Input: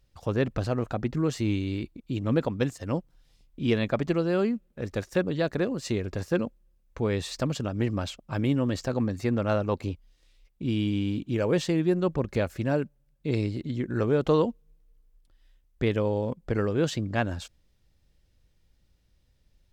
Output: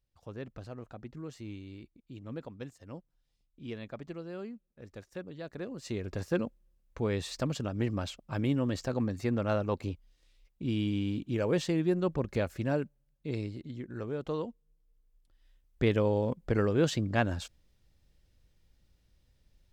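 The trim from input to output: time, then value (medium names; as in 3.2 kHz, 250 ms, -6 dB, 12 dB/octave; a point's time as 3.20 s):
5.40 s -16 dB
6.15 s -4 dB
12.72 s -4 dB
13.99 s -12 dB
14.49 s -12 dB
15.84 s -1 dB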